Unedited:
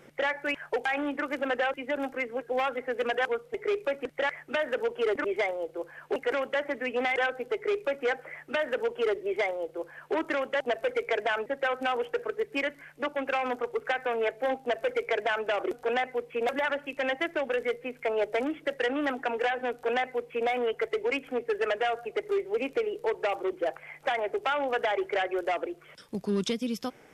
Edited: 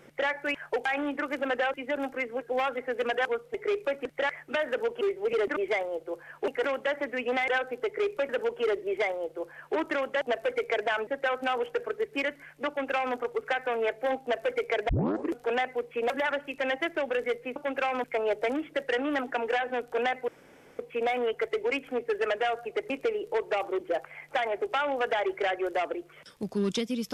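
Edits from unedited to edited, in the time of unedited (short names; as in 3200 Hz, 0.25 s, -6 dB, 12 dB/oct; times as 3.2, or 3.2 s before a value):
7.97–8.68 cut
13.07–13.55 copy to 17.95
15.28 tape start 0.45 s
20.19 insert room tone 0.51 s
22.3–22.62 move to 5.01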